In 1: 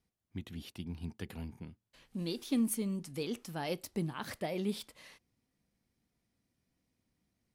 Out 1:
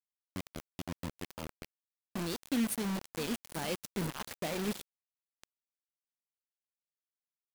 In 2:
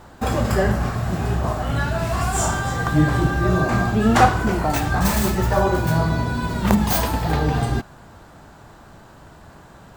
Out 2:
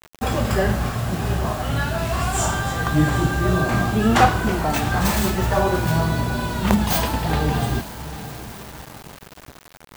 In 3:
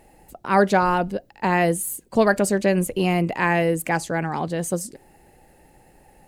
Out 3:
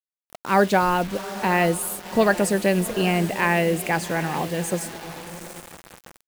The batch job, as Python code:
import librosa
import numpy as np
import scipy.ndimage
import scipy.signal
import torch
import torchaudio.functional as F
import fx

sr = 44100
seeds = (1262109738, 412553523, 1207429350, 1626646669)

y = fx.echo_diffused(x, sr, ms=768, feedback_pct=41, wet_db=-13.5)
y = fx.quant_dither(y, sr, seeds[0], bits=6, dither='none')
y = fx.dynamic_eq(y, sr, hz=3000.0, q=1.4, threshold_db=-41.0, ratio=4.0, max_db=4)
y = y * 10.0 ** (-1.0 / 20.0)